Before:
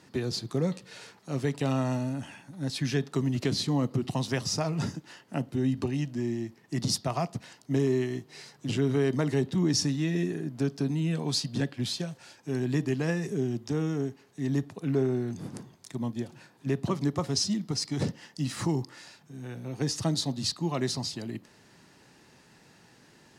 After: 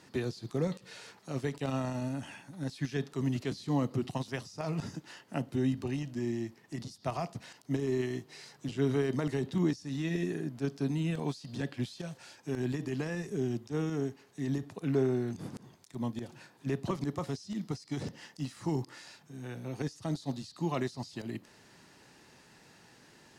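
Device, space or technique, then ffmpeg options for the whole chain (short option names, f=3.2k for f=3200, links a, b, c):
de-esser from a sidechain: -filter_complex "[0:a]asplit=2[a][b];[b]highpass=f=6.4k:w=0.5412,highpass=f=6.4k:w=1.3066,apad=whole_len=1031111[c];[a][c]sidechaincompress=threshold=-53dB:ratio=10:attack=0.58:release=54,equalizer=f=150:t=o:w=2.4:g=-3"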